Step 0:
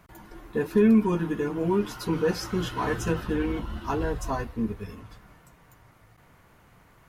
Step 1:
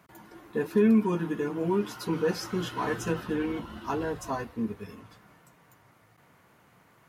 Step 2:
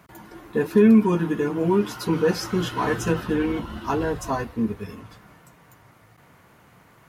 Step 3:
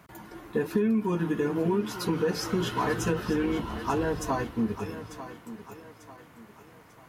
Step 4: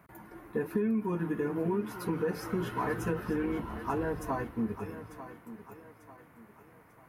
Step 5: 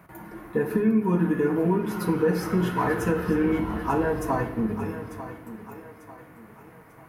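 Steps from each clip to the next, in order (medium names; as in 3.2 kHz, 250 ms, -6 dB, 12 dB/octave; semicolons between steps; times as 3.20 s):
high-pass 130 Hz 12 dB/octave; trim -2 dB
bass shelf 64 Hz +10 dB; trim +6 dB
compression 6:1, threshold -21 dBFS, peak gain reduction 10 dB; thinning echo 894 ms, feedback 42%, high-pass 160 Hz, level -12.5 dB; trim -1.5 dB
high-order bell 4.8 kHz -10 dB; trim -4.5 dB
reverberation RT60 0.95 s, pre-delay 6 ms, DRR 5.5 dB; trim +6.5 dB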